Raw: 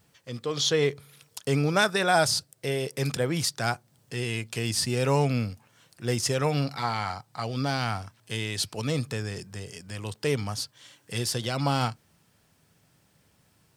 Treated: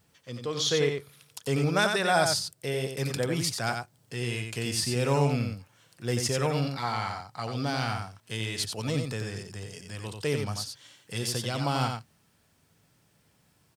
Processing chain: delay 90 ms -5.5 dB; trim -2.5 dB

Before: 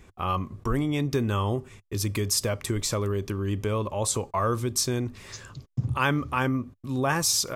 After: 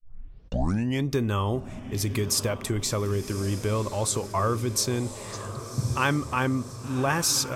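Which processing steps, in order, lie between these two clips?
tape start-up on the opening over 1.05 s; on a send: echo that smears into a reverb 1110 ms, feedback 53%, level -12 dB

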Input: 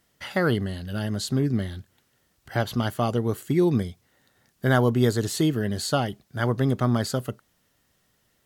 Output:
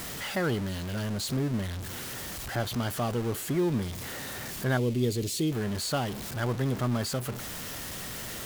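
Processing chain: jump at every zero crossing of -24 dBFS; 4.77–5.52 s: high-order bell 1.1 kHz -13.5 dB; trim -8 dB

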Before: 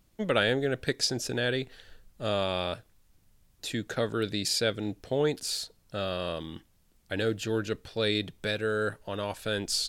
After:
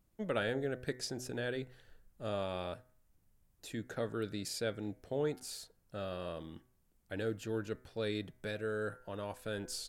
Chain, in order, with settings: peaking EQ 3.9 kHz -7.5 dB 1.7 oct; de-hum 126 Hz, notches 18; trim -7.5 dB

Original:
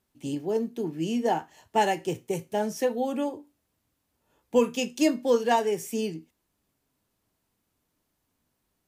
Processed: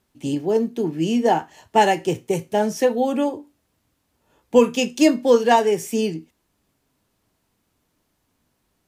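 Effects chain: treble shelf 11 kHz -6.5 dB; trim +7.5 dB

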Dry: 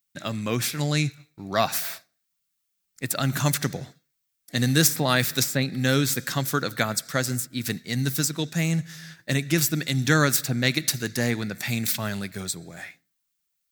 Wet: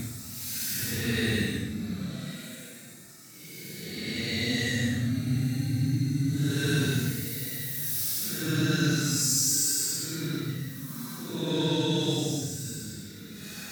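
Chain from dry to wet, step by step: two-band feedback delay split 330 Hz, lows 770 ms, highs 198 ms, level -13.5 dB; Paulstretch 15×, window 0.05 s, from 7.62 s; trim -2.5 dB

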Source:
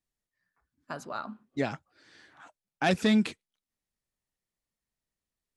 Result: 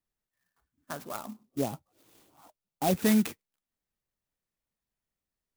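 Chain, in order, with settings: 1.16–2.93 s: Butterworth band-stop 1.8 kHz, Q 0.96; sampling jitter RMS 0.07 ms

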